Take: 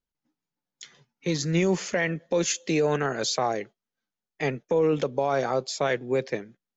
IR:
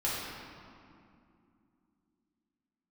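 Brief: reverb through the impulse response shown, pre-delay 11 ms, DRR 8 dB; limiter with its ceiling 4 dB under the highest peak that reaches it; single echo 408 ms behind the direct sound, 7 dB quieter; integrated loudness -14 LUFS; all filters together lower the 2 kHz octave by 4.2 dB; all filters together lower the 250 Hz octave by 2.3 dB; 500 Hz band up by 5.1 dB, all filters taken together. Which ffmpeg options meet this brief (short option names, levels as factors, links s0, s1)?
-filter_complex "[0:a]equalizer=f=250:t=o:g=-8,equalizer=f=500:t=o:g=8,equalizer=f=2000:t=o:g=-5.5,alimiter=limit=0.2:level=0:latency=1,aecho=1:1:408:0.447,asplit=2[s0][s1];[1:a]atrim=start_sample=2205,adelay=11[s2];[s1][s2]afir=irnorm=-1:irlink=0,volume=0.158[s3];[s0][s3]amix=inputs=2:normalize=0,volume=3.16"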